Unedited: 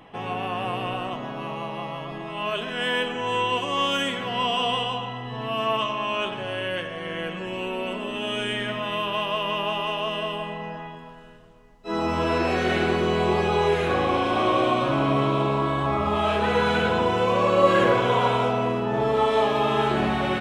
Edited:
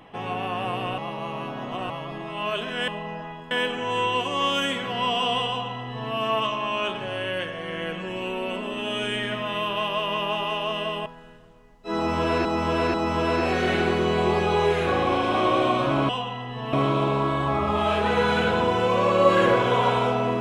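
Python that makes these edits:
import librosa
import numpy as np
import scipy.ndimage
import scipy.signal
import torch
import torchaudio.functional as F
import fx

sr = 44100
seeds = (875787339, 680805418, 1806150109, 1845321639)

y = fx.edit(x, sr, fx.reverse_span(start_s=0.98, length_s=0.92),
    fx.duplicate(start_s=4.85, length_s=0.64, to_s=15.11),
    fx.move(start_s=10.43, length_s=0.63, to_s=2.88),
    fx.repeat(start_s=11.96, length_s=0.49, count=3), tone=tone)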